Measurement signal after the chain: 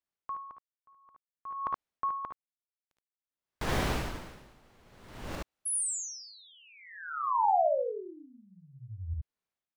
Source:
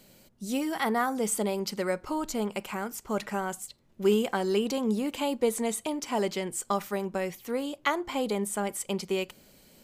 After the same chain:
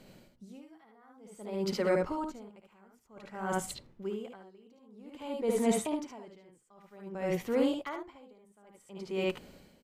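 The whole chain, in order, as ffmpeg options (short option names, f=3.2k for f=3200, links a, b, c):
-filter_complex "[0:a]asplit=2[a][b];[b]aeval=exprs='(mod(4.22*val(0)+1,2)-1)/4.22':c=same,volume=-6.5dB[c];[a][c]amix=inputs=2:normalize=0,dynaudnorm=f=900:g=5:m=8.5dB,lowpass=f=2k:p=1,areverse,acompressor=threshold=-25dB:ratio=12,areverse,aecho=1:1:57|73:0.447|0.708,aeval=exprs='val(0)*pow(10,-33*(0.5-0.5*cos(2*PI*0.53*n/s))/20)':c=same"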